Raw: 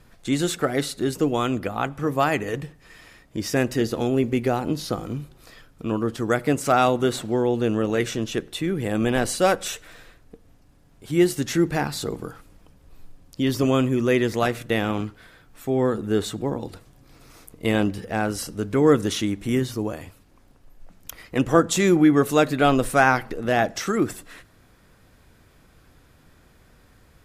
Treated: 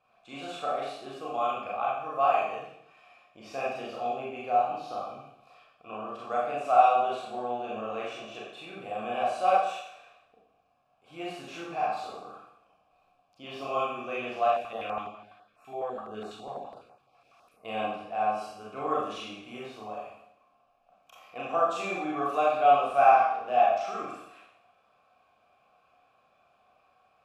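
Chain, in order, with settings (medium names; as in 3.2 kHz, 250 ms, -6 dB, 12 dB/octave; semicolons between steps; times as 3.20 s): vowel filter a; peaking EQ 330 Hz -6.5 dB 1.3 oct; Schroeder reverb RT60 0.74 s, combs from 29 ms, DRR -6 dB; 14.48–17.65 s: step-sequenced notch 12 Hz 290–3300 Hz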